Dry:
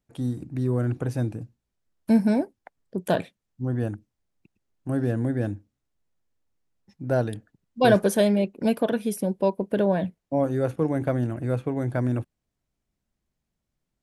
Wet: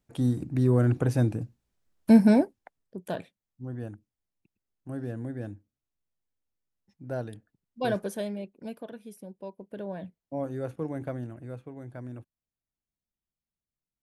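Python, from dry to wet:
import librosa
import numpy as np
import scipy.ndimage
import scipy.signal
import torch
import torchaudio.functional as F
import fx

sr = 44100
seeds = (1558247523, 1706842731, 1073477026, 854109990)

y = fx.gain(x, sr, db=fx.line((2.38, 2.5), (2.98, -10.0), (7.85, -10.0), (8.94, -18.0), (9.53, -18.0), (10.4, -9.0), (11.04, -9.0), (11.66, -15.5)))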